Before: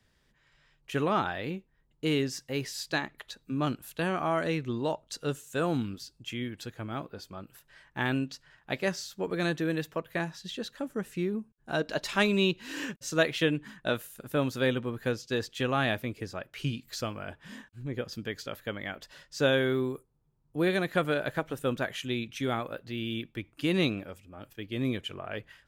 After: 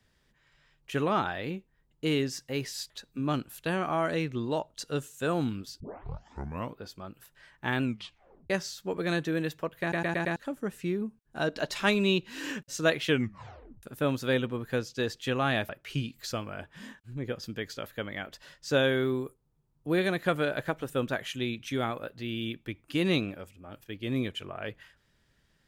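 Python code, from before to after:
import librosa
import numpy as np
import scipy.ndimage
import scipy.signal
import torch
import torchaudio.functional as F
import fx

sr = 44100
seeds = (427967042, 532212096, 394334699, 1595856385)

y = fx.edit(x, sr, fx.cut(start_s=2.9, length_s=0.33),
    fx.tape_start(start_s=6.13, length_s=0.99),
    fx.tape_stop(start_s=8.16, length_s=0.67),
    fx.stutter_over(start_s=10.14, slice_s=0.11, count=5),
    fx.tape_stop(start_s=13.41, length_s=0.75),
    fx.cut(start_s=16.02, length_s=0.36), tone=tone)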